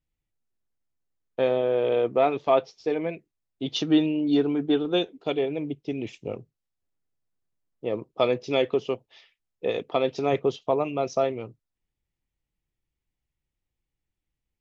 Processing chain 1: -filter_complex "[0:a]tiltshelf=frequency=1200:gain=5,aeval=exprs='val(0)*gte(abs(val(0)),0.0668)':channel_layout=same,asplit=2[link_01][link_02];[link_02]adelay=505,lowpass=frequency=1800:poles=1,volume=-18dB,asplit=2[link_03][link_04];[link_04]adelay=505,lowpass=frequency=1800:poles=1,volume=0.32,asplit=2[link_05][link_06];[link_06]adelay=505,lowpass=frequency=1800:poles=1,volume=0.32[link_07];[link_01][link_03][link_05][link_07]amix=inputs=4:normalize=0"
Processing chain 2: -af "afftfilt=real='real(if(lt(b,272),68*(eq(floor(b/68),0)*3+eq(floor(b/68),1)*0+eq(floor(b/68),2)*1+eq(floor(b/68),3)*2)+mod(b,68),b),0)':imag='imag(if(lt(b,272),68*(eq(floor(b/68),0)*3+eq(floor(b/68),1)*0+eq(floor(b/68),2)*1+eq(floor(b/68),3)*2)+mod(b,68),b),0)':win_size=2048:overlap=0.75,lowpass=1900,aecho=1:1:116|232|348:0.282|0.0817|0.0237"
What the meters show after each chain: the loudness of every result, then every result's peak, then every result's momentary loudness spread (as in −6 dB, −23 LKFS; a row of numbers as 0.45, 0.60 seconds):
−22.5, −26.5 LKFS; −6.5, −12.5 dBFS; 16, 12 LU